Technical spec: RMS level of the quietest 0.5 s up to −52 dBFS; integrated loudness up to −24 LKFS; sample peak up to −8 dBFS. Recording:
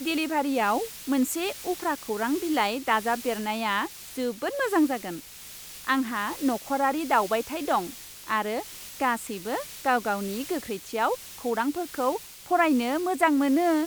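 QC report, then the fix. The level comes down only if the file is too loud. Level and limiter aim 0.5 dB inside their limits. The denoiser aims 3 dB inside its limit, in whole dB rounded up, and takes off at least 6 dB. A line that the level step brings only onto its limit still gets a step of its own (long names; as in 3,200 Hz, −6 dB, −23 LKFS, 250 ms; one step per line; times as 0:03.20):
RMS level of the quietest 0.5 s −44 dBFS: out of spec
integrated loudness −27.0 LKFS: in spec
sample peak −8.5 dBFS: in spec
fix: broadband denoise 11 dB, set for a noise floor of −44 dBFS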